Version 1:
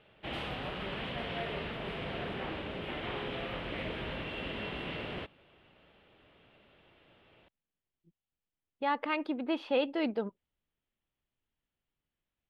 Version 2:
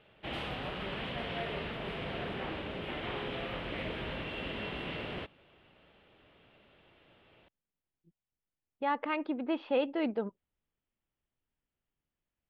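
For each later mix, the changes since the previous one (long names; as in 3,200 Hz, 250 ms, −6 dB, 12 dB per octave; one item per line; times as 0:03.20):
speech: add Gaussian smoothing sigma 2.2 samples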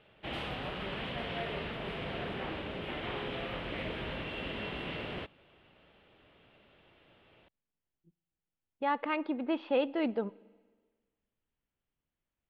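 reverb: on, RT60 1.5 s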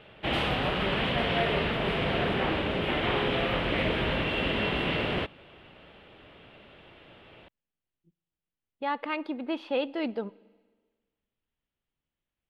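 speech: remove Gaussian smoothing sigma 2.2 samples
background +10.5 dB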